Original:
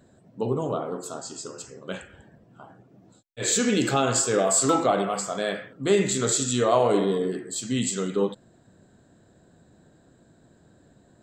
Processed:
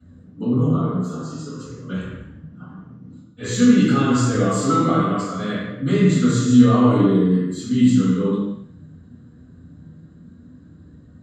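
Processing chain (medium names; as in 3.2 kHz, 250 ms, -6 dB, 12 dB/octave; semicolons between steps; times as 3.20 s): peaking EQ 350 Hz -9 dB 0.76 oct; de-hum 65.18 Hz, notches 34; flange 0.27 Hz, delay 1.4 ms, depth 7.1 ms, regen +57%; thinning echo 89 ms, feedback 46%, level -16 dB; reverberation, pre-delay 3 ms, DRR -14 dB; trim -13 dB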